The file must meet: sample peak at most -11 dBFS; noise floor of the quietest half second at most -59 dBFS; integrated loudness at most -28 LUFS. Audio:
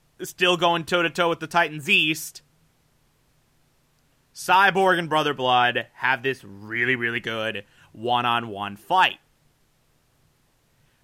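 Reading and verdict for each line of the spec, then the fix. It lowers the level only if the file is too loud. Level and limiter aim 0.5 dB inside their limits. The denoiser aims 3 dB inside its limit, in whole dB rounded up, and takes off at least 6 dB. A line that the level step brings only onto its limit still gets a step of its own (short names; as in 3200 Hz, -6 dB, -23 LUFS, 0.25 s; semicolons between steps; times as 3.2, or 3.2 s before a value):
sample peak -6.0 dBFS: fail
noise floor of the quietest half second -64 dBFS: OK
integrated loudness -22.0 LUFS: fail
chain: gain -6.5 dB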